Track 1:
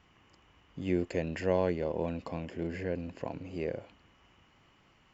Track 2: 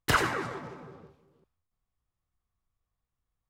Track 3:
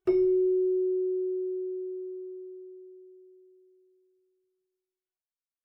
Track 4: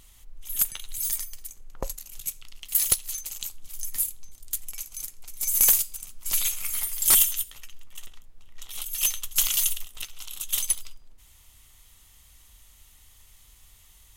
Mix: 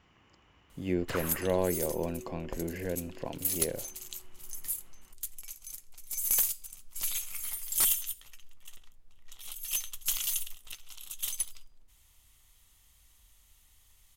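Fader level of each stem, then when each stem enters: -0.5 dB, -13.5 dB, -19.0 dB, -8.0 dB; 0.00 s, 1.00 s, 1.35 s, 0.70 s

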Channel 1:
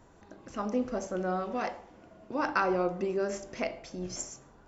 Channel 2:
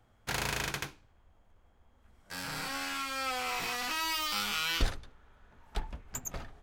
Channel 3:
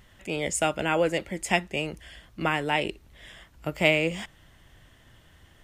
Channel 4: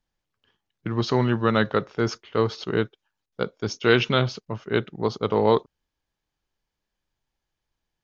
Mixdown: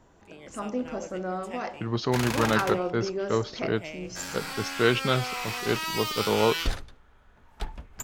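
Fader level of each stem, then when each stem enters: -0.5 dB, +1.5 dB, -19.0 dB, -4.0 dB; 0.00 s, 1.85 s, 0.00 s, 0.95 s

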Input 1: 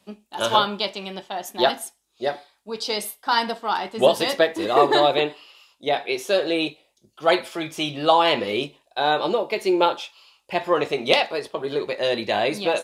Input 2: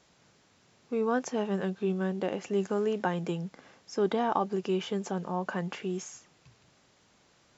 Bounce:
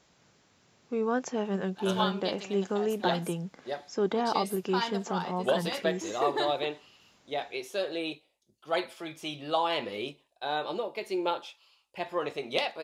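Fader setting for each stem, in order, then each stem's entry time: -11.0 dB, -0.5 dB; 1.45 s, 0.00 s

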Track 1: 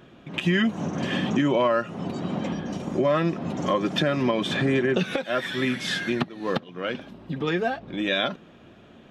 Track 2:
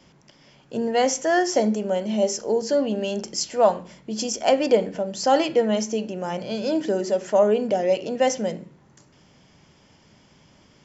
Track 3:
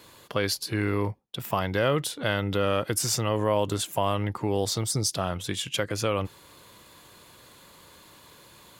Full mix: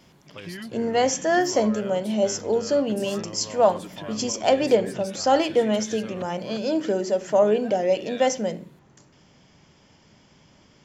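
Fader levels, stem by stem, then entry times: -15.5 dB, -0.5 dB, -16.0 dB; 0.00 s, 0.00 s, 0.00 s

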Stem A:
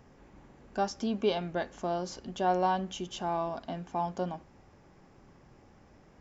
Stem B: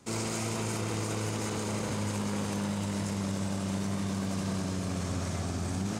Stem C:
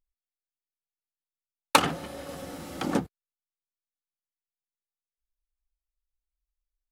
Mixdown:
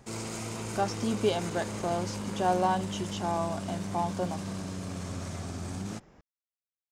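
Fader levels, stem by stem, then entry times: +1.0 dB, -4.0 dB, mute; 0.00 s, 0.00 s, mute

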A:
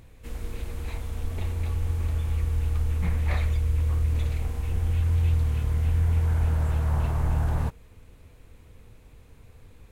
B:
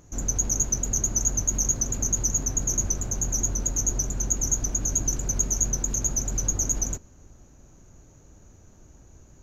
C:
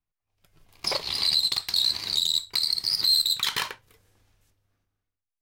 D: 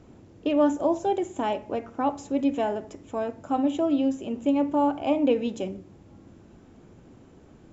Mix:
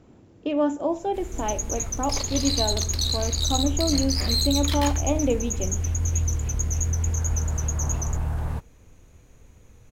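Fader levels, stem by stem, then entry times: -2.5 dB, -6.0 dB, -4.5 dB, -1.5 dB; 0.90 s, 1.20 s, 1.25 s, 0.00 s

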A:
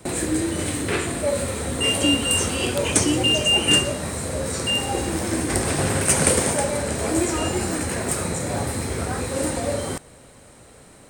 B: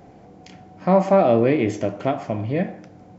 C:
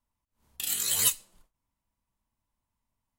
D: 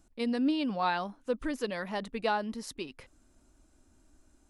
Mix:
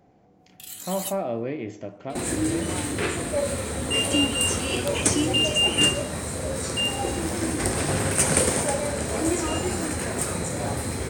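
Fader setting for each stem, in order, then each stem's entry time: -2.5 dB, -12.0 dB, -9.0 dB, -11.5 dB; 2.10 s, 0.00 s, 0.00 s, 1.90 s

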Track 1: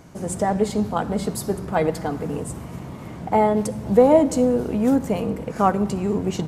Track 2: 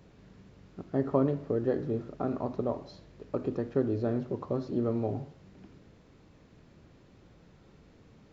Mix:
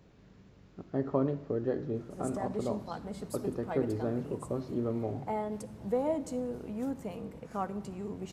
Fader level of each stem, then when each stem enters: -16.5 dB, -3.0 dB; 1.95 s, 0.00 s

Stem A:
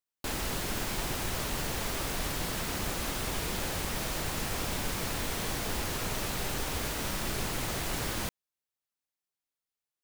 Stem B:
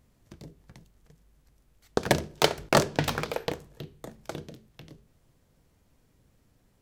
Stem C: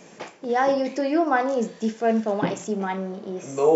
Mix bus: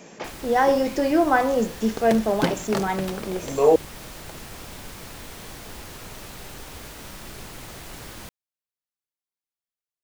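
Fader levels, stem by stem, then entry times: -6.0 dB, -8.0 dB, +2.0 dB; 0.00 s, 0.00 s, 0.00 s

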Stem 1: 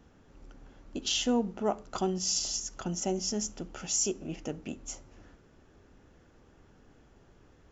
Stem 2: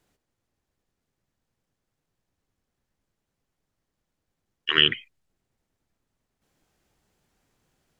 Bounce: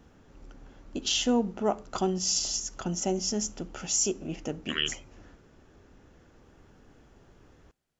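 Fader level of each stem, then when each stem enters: +2.5 dB, -11.0 dB; 0.00 s, 0.00 s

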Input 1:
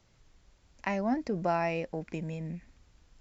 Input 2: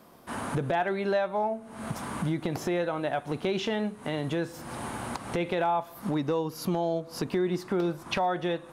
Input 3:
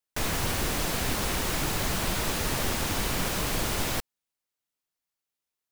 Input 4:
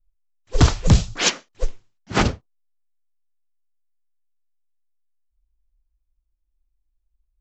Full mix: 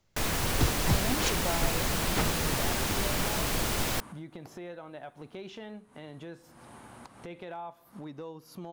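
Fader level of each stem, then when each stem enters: -6.0 dB, -14.0 dB, -1.0 dB, -13.5 dB; 0.00 s, 1.90 s, 0.00 s, 0.00 s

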